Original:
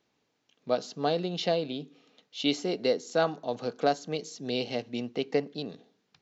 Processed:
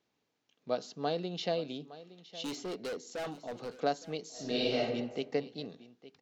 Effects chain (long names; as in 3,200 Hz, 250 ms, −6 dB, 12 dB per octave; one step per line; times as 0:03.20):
0:02.44–0:03.76: hard clipping −29.5 dBFS, distortion −8 dB
single-tap delay 864 ms −17 dB
0:04.31–0:04.78: thrown reverb, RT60 1.1 s, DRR −6.5 dB
level −5.5 dB